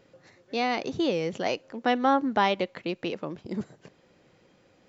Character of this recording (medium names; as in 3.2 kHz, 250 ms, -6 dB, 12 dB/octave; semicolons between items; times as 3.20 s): noise floor -63 dBFS; spectral tilt -3.0 dB/octave